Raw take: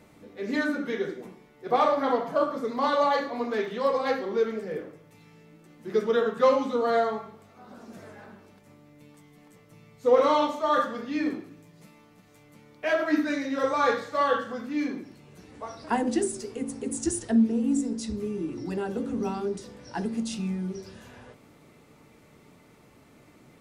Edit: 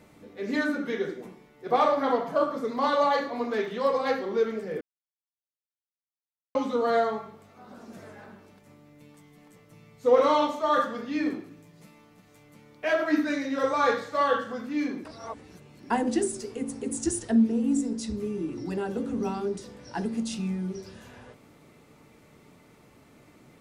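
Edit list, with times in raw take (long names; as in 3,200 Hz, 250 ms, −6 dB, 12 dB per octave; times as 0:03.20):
0:04.81–0:06.55: silence
0:15.05–0:15.90: reverse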